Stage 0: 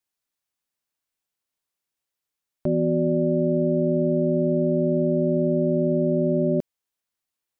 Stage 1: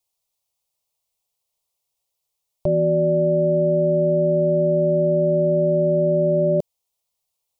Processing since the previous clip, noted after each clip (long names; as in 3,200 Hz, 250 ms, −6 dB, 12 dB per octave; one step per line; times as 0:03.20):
phaser with its sweep stopped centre 660 Hz, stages 4
level +7.5 dB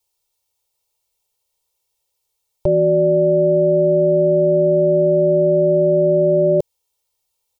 comb filter 2.2 ms, depth 78%
level +3 dB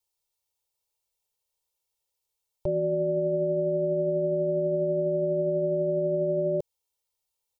brickwall limiter −10.5 dBFS, peak gain reduction 3.5 dB
level −9 dB